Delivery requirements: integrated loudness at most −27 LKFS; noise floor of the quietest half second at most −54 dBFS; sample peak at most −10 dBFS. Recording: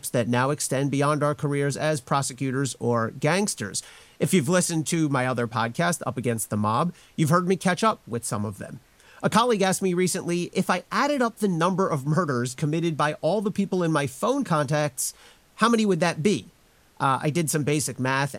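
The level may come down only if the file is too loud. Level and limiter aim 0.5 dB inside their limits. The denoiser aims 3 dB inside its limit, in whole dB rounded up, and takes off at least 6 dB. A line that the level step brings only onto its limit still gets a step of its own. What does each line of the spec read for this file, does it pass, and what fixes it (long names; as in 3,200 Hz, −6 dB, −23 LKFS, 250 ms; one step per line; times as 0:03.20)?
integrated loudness −24.5 LKFS: out of spec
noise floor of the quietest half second −58 dBFS: in spec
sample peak −6.5 dBFS: out of spec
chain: level −3 dB
brickwall limiter −10.5 dBFS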